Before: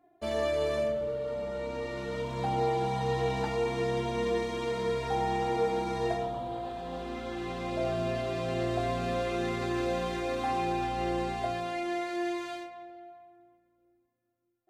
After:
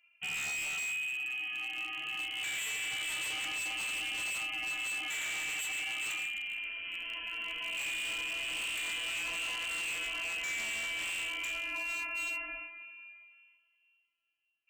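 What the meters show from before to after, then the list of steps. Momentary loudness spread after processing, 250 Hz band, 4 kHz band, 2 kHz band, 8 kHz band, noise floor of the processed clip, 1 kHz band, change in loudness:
4 LU, -22.5 dB, +7.0 dB, +7.5 dB, +11.5 dB, -74 dBFS, -16.0 dB, -2.5 dB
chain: frequency inversion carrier 3.1 kHz; wavefolder -28.5 dBFS; trim -3 dB

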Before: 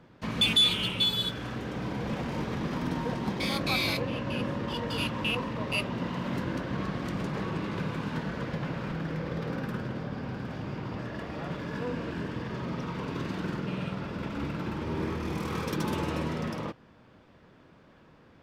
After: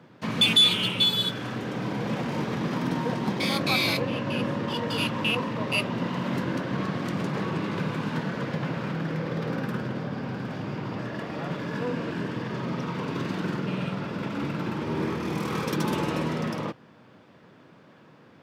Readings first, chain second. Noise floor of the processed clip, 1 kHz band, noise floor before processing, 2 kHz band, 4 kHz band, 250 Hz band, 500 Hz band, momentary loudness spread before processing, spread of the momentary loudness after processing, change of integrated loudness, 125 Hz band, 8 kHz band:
-54 dBFS, +4.0 dB, -57 dBFS, +4.0 dB, +4.0 dB, +4.0 dB, +4.0 dB, 10 LU, 11 LU, +4.0 dB, +3.0 dB, +4.0 dB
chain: high-pass 110 Hz 24 dB/octave; trim +4 dB

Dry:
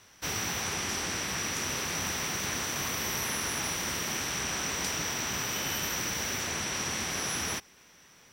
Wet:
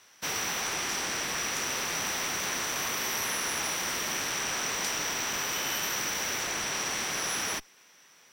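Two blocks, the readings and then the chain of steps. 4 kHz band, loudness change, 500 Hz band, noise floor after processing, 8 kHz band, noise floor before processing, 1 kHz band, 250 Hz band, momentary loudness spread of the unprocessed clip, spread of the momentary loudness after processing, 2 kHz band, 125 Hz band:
+1.5 dB, +1.0 dB, +0.5 dB, -58 dBFS, +1.0 dB, -58 dBFS, +2.0 dB, -3.0 dB, 1 LU, 1 LU, +2.0 dB, -7.0 dB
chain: high-pass 530 Hz 6 dB/octave; in parallel at -8 dB: Schmitt trigger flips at -33.5 dBFS

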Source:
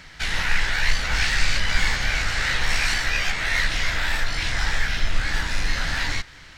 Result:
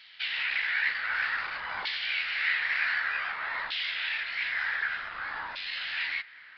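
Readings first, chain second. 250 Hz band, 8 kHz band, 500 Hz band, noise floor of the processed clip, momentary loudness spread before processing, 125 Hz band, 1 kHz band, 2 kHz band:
under -20 dB, under -35 dB, -14.5 dB, -51 dBFS, 4 LU, under -30 dB, -6.0 dB, -4.5 dB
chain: wavefolder -13.5 dBFS; LFO band-pass saw down 0.54 Hz 950–3400 Hz; resampled via 11.025 kHz

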